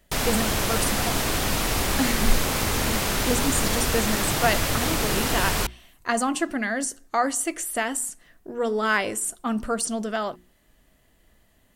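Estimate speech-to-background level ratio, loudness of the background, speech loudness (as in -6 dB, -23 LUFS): -3.5 dB, -24.0 LUFS, -27.5 LUFS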